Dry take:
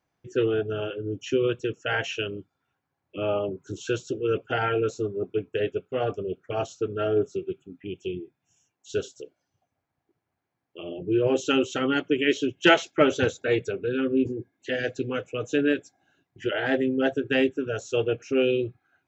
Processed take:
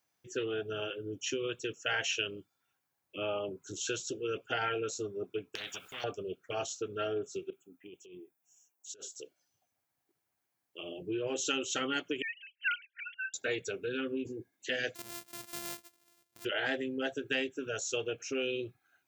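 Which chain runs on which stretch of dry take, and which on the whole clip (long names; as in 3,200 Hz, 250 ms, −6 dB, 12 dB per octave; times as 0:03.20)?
0:05.55–0:06.04: downward compressor 2 to 1, threshold −36 dBFS + every bin compressed towards the loudest bin 4 to 1
0:07.50–0:09.15: high-pass filter 680 Hz 6 dB per octave + parametric band 3,300 Hz −13.5 dB 2.5 octaves + compressor whose output falls as the input rises −43 dBFS
0:12.22–0:13.34: three sine waves on the formant tracks + linear-phase brick-wall high-pass 1,400 Hz + spectral tilt −3 dB per octave
0:14.95–0:16.45: samples sorted by size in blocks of 128 samples + downward compressor 2 to 1, threshold −50 dBFS
whole clip: high-shelf EQ 4,400 Hz +9 dB; downward compressor, threshold −23 dBFS; spectral tilt +2 dB per octave; level −5.5 dB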